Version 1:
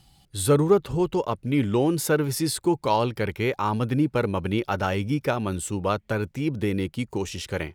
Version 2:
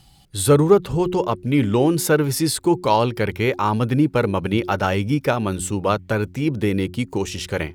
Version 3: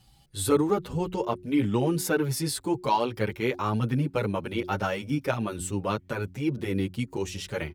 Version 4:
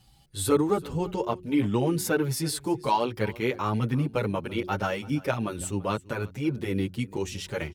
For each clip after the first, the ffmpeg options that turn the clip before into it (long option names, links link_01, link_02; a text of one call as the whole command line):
ffmpeg -i in.wav -af "bandreject=frequency=90.17:width_type=h:width=4,bandreject=frequency=180.34:width_type=h:width=4,bandreject=frequency=270.51:width_type=h:width=4,bandreject=frequency=360.68:width_type=h:width=4,volume=5dB" out.wav
ffmpeg -i in.wav -filter_complex "[0:a]asplit=2[link_01][link_02];[link_02]adelay=7.4,afreqshift=1.9[link_03];[link_01][link_03]amix=inputs=2:normalize=1,volume=-4.5dB" out.wav
ffmpeg -i in.wav -af "aecho=1:1:335:0.0841" out.wav